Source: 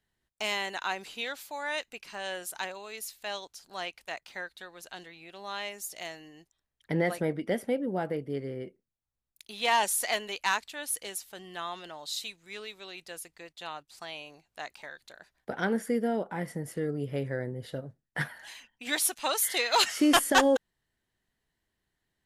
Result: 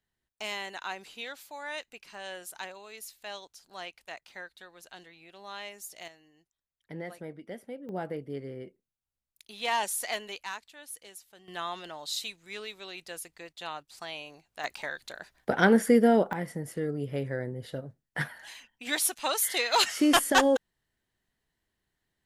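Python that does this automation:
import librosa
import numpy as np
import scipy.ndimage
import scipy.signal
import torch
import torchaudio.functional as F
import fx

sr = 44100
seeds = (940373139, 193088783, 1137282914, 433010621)

y = fx.gain(x, sr, db=fx.steps((0.0, -4.5), (6.08, -12.0), (7.89, -3.5), (10.43, -10.5), (11.48, 1.5), (14.64, 8.0), (16.33, 0.0)))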